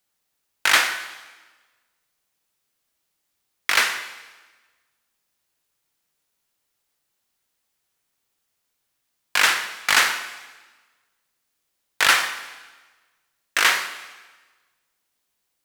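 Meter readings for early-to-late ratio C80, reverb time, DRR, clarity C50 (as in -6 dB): 12.0 dB, 1.3 s, 8.5 dB, 10.5 dB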